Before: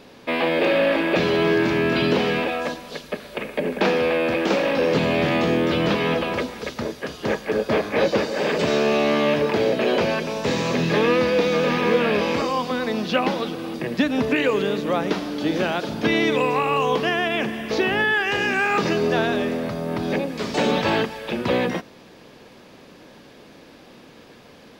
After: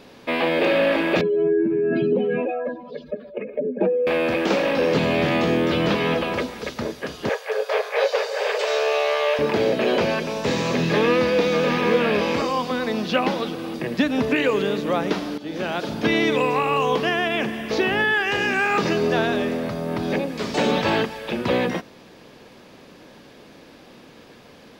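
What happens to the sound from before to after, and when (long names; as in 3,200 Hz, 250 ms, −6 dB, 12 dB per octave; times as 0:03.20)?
0:01.21–0:04.07: expanding power law on the bin magnitudes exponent 2.6
0:07.29–0:09.39: Butterworth high-pass 420 Hz 96 dB per octave
0:15.38–0:15.85: fade in, from −15 dB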